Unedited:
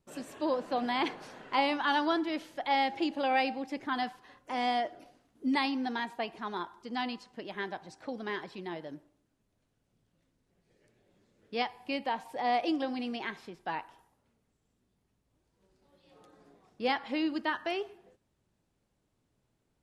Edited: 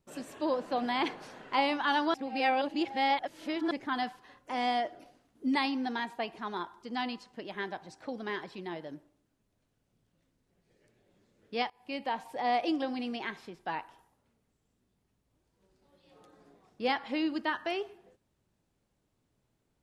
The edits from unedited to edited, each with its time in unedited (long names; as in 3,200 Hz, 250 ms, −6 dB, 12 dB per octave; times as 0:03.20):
0:02.14–0:03.71: reverse
0:11.70–0:12.24: fade in equal-power, from −21 dB